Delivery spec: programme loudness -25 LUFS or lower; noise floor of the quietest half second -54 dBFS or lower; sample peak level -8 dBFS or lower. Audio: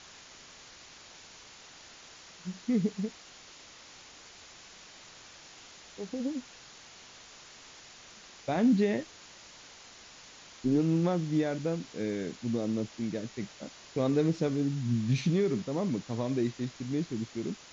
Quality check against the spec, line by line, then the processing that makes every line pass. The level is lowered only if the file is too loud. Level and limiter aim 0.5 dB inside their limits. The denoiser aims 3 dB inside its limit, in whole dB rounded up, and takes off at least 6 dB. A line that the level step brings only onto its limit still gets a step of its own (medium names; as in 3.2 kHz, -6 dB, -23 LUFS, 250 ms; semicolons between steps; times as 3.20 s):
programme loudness -31.5 LUFS: pass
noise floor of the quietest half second -52 dBFS: fail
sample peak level -16.0 dBFS: pass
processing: noise reduction 6 dB, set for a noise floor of -52 dBFS